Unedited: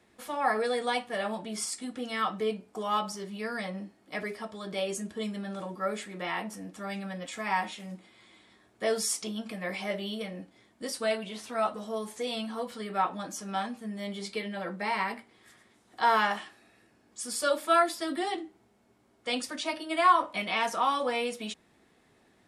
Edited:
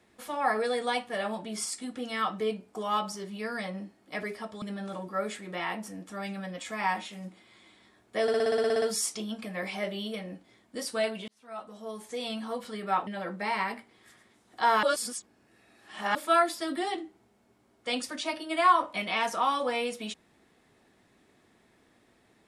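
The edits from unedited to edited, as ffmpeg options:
-filter_complex "[0:a]asplit=16[s0][s1][s2][s3][s4][s5][s6][s7][s8][s9][s10][s11][s12][s13][s14][s15];[s0]atrim=end=4.622[s16];[s1]atrim=start=5.288:end=8.952[s17];[s2]atrim=start=8.888:end=8.952[s18];[s3]atrim=start=8.888:end=8.952[s19];[s4]atrim=start=8.888:end=8.952[s20];[s5]atrim=start=8.888:end=8.952[s21];[s6]atrim=start=8.888:end=8.952[s22];[s7]atrim=start=8.888:end=8.952[s23];[s8]atrim=start=8.888:end=8.952[s24];[s9]atrim=start=8.888:end=8.952[s25];[s10]atrim=start=8.888:end=8.952[s26];[s11]atrim=start=8.888:end=11.35,asetpts=PTS-STARTPTS,afade=t=out:st=2.458:d=0.004:c=hsin[s27];[s12]atrim=start=11.35:end=13.142,asetpts=PTS-STARTPTS,afade=t=in:d=1.12[s28];[s13]atrim=start=14.468:end=16.232[s29];[s14]atrim=start=16.228:end=17.552,asetpts=PTS-STARTPTS,areverse[s30];[s15]atrim=start=17.548[s31];[s16][s17]acrossfade=d=0.004:c1=hsin:c2=hsin[s32];[s32][s18]acrossfade=d=0.004:c1=hsin:c2=hsin[s33];[s33][s19]acrossfade=d=0.004:c1=hsin:c2=hsin[s34];[s34][s20]acrossfade=d=0.004:c1=hsin:c2=hsin[s35];[s35][s21]acrossfade=d=0.004:c1=hsin:c2=hsin[s36];[s36][s22]acrossfade=d=0.004:c1=hsin:c2=hsin[s37];[s37][s23]acrossfade=d=0.004:c1=hsin:c2=hsin[s38];[s38][s24]acrossfade=d=0.004:c1=hsin:c2=hsin[s39];[s39][s25]acrossfade=d=0.004:c1=hsin:c2=hsin[s40];[s40][s26]acrossfade=d=0.004:c1=hsin:c2=hsin[s41];[s27][s28]concat=n=2:v=0:a=1[s42];[s41][s42]acrossfade=d=0.004:c1=hsin:c2=hsin[s43];[s43][s29]acrossfade=d=0.004:c1=hsin:c2=hsin[s44];[s44][s30]acrossfade=d=0.004:c1=hsin:c2=hsin[s45];[s45][s31]acrossfade=d=0.004:c1=hsin:c2=hsin"

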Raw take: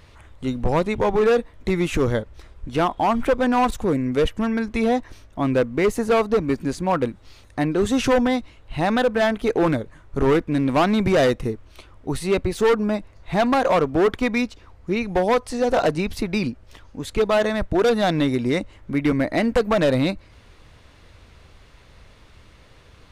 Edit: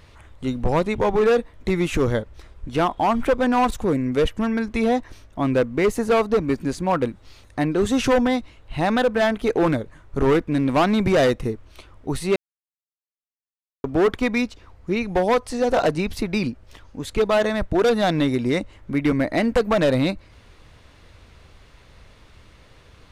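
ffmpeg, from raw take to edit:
-filter_complex "[0:a]asplit=3[s0][s1][s2];[s0]atrim=end=12.36,asetpts=PTS-STARTPTS,afade=t=out:st=12.356:d=0.004:c=hsin[s3];[s1]atrim=start=12.36:end=13.84,asetpts=PTS-STARTPTS,volume=0[s4];[s2]atrim=start=13.84,asetpts=PTS-STARTPTS,afade=t=in:d=0.004:c=hsin[s5];[s3][s4][s5]concat=n=3:v=0:a=1"

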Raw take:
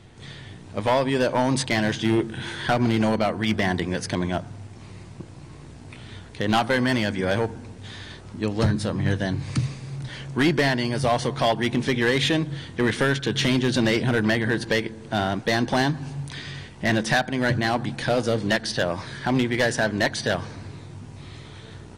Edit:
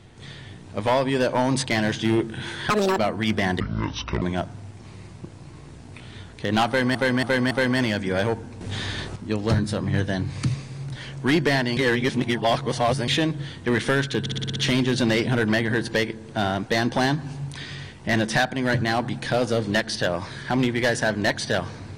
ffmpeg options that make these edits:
-filter_complex "[0:a]asplit=18[s0][s1][s2][s3][s4][s5][s6][s7][s8][s9][s10][s11][s12][s13][s14][s15][s16][s17];[s0]atrim=end=2.704[s18];[s1]atrim=start=2.7:end=3.19,asetpts=PTS-STARTPTS,asetrate=76734,aresample=44100[s19];[s2]atrim=start=3.186:end=3.814[s20];[s3]atrim=start=3.81:end=4.18,asetpts=PTS-STARTPTS,asetrate=26460,aresample=44100[s21];[s4]atrim=start=4.176:end=6.912[s22];[s5]atrim=start=6.628:end=6.912[s23];[s6]atrim=start=6.628:end=6.912[s24];[s7]atrim=start=6.628:end=7.732[s25];[s8]atrim=start=7.728:end=8.282,asetpts=PTS-STARTPTS,volume=2.82[s26];[s9]atrim=start=8.278:end=10.892[s27];[s10]atrim=start=10.888:end=12.202,asetpts=PTS-STARTPTS,areverse[s28];[s11]atrim=start=12.198:end=13.382[s29];[s12]atrim=start=13.318:end=13.382[s30];[s13]atrim=start=13.318:end=13.382[s31];[s14]atrim=start=13.318:end=13.382[s32];[s15]atrim=start=13.318:end=13.382[s33];[s16]atrim=start=13.318:end=13.382[s34];[s17]atrim=start=13.318[s35];[s18][s19]acrossfade=d=0.004:c1=hsin:c2=hsin[s36];[s36][s20]acrossfade=d=0.004:c1=hsin:c2=hsin[s37];[s37][s21]acrossfade=d=0.004:c1=hsin:c2=hsin[s38];[s38][s22]acrossfade=d=0.004:c1=hsin:c2=hsin[s39];[s39][s23]acrossfade=d=0.004:c1=hsin:c2=hsin[s40];[s40][s24]acrossfade=d=0.004:c1=hsin:c2=hsin[s41];[s41][s25]acrossfade=d=0.004:c1=hsin:c2=hsin[s42];[s42][s26]acrossfade=d=0.004:c1=hsin:c2=hsin[s43];[s43][s27]acrossfade=d=0.004:c1=hsin:c2=hsin[s44];[s44][s28]acrossfade=d=0.004:c1=hsin:c2=hsin[s45];[s45][s29]acrossfade=d=0.004:c1=hsin:c2=hsin[s46];[s46][s30]acrossfade=d=0.004:c1=hsin:c2=hsin[s47];[s47][s31]acrossfade=d=0.004:c1=hsin:c2=hsin[s48];[s48][s32]acrossfade=d=0.004:c1=hsin:c2=hsin[s49];[s49][s33]acrossfade=d=0.004:c1=hsin:c2=hsin[s50];[s50][s34]acrossfade=d=0.004:c1=hsin:c2=hsin[s51];[s51][s35]acrossfade=d=0.004:c1=hsin:c2=hsin"

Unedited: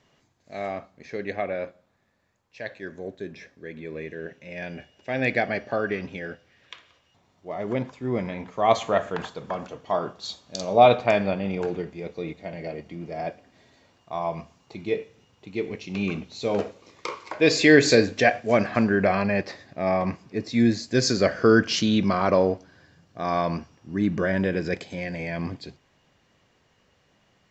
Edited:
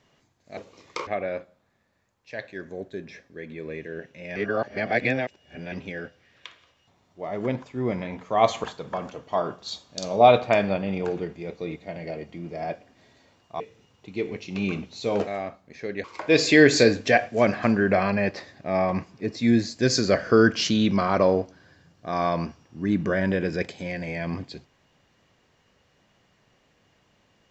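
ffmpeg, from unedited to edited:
-filter_complex "[0:a]asplit=9[s0][s1][s2][s3][s4][s5][s6][s7][s8];[s0]atrim=end=0.572[s9];[s1]atrim=start=16.658:end=17.162[s10];[s2]atrim=start=1.338:end=4.632[s11];[s3]atrim=start=4.628:end=5.992,asetpts=PTS-STARTPTS,areverse[s12];[s4]atrim=start=5.988:end=8.912[s13];[s5]atrim=start=9.208:end=14.172[s14];[s6]atrim=start=14.988:end=16.662[s15];[s7]atrim=start=0.568:end=1.342[s16];[s8]atrim=start=17.158[s17];[s9][s10]acrossfade=d=0.004:c1=hsin:c2=hsin[s18];[s18][s11]acrossfade=d=0.004:c1=hsin:c2=hsin[s19];[s19][s12]acrossfade=d=0.004:c1=hsin:c2=hsin[s20];[s20][s13]acrossfade=d=0.004:c1=hsin:c2=hsin[s21];[s21][s14]acrossfade=d=0.004:c1=hsin:c2=hsin[s22];[s22][s15]acrossfade=d=0.004:c1=hsin:c2=hsin[s23];[s23][s16]acrossfade=d=0.004:c1=hsin:c2=hsin[s24];[s24][s17]acrossfade=d=0.004:c1=hsin:c2=hsin"

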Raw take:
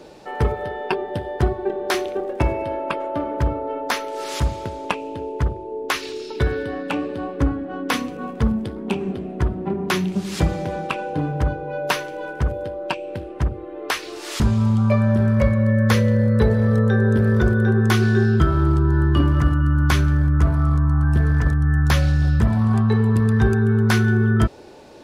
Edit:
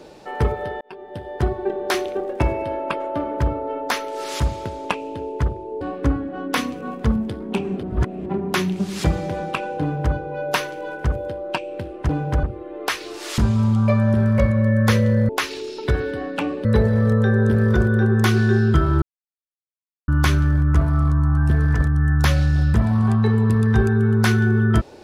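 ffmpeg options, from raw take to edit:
-filter_complex "[0:a]asplit=11[s0][s1][s2][s3][s4][s5][s6][s7][s8][s9][s10];[s0]atrim=end=0.81,asetpts=PTS-STARTPTS,afade=t=out:st=0.806:d=0.004:c=hsin[s11];[s1]atrim=start=0.81:end=5.812,asetpts=PTS-STARTPTS,afade=t=in:d=0.76[s12];[s2]atrim=start=7.168:end=9.192[s13];[s3]atrim=start=9.188:end=9.622,asetpts=PTS-STARTPTS,areverse[s14];[s4]atrim=start=9.618:end=13.452[s15];[s5]atrim=start=11.168:end=11.512[s16];[s6]atrim=start=13.448:end=16.312[s17];[s7]atrim=start=5.808:end=7.172[s18];[s8]atrim=start=16.308:end=18.68,asetpts=PTS-STARTPTS,afade=t=out:st=2.368:d=0.004:c=hsin[s19];[s9]atrim=start=18.68:end=19.74,asetpts=PTS-STARTPTS,volume=0[s20];[s10]atrim=start=19.74,asetpts=PTS-STARTPTS,afade=t=in:d=0.004:c=hsin[s21];[s11][s12]concat=n=2:v=0:a=1[s22];[s22][s13]acrossfade=d=0.004:c1=hsin:c2=hsin[s23];[s23][s14]acrossfade=d=0.004:c1=hsin:c2=hsin[s24];[s24][s15]acrossfade=d=0.004:c1=hsin:c2=hsin[s25];[s25][s16]acrossfade=d=0.004:c1=hsin:c2=hsin[s26];[s26][s17]acrossfade=d=0.004:c1=hsin:c2=hsin[s27];[s27][s18]acrossfade=d=0.004:c1=hsin:c2=hsin[s28];[s19][s20][s21]concat=n=3:v=0:a=1[s29];[s28][s29]acrossfade=d=0.004:c1=hsin:c2=hsin"

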